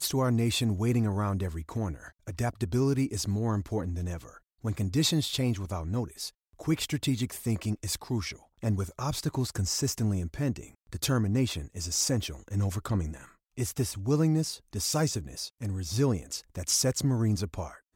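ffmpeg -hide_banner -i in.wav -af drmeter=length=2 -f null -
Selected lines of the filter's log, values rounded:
Channel 1: DR: 10.8
Overall DR: 10.8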